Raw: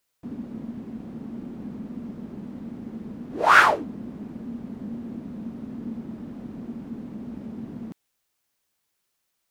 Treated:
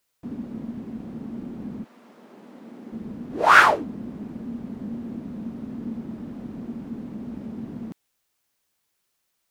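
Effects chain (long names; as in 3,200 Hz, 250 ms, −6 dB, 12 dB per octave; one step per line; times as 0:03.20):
0:01.83–0:02.91: high-pass filter 890 Hz → 290 Hz 12 dB per octave
level +1.5 dB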